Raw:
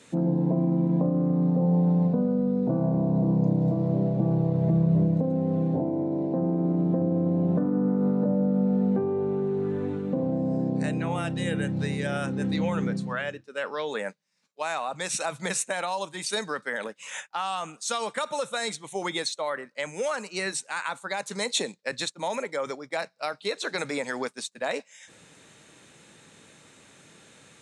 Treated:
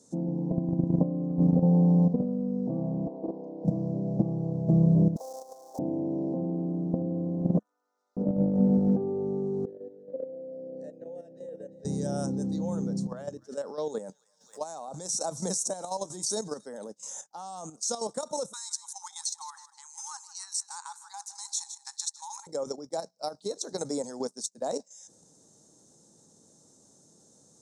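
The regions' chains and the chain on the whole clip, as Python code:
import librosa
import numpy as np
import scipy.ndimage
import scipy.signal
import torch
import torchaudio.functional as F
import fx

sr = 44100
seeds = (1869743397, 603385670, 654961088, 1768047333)

y = fx.chain(x, sr, fx.highpass(hz=330.0, slope=24),
    fx.air_absorb(metres=240.0), at=(3.07, 3.65))
y = fx.chain(y, sr, fx.dead_time(dead_ms=0.058),
    fx.highpass(hz=770.0, slope=24),
    fx.leveller(passes=1), at=(5.16, 5.79))
y = fx.chain(y, sr, fx.ladder_highpass(hz=1700.0, resonance_pct=35),
    fx.comb(ms=7.3, depth=0.52), at=(7.59, 8.17))
y = fx.chain(y, sr, fx.vowel_filter(vowel='e'),
    fx.echo_single(ms=341, db=-12.0), at=(9.65, 11.85))
y = fx.chain(y, sr, fx.echo_wet_highpass(ms=270, feedback_pct=50, hz=1700.0, wet_db=-21.5),
    fx.pre_swell(db_per_s=140.0), at=(12.92, 16.66))
y = fx.chain(y, sr, fx.brickwall_highpass(low_hz=790.0),
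    fx.echo_feedback(ms=160, feedback_pct=48, wet_db=-15.0), at=(18.53, 22.47))
y = fx.curve_eq(y, sr, hz=(120.0, 210.0, 810.0, 2500.0, 5700.0, 9300.0), db=(0, 4, 0, -29, 10, 3))
y = fx.level_steps(y, sr, step_db=10)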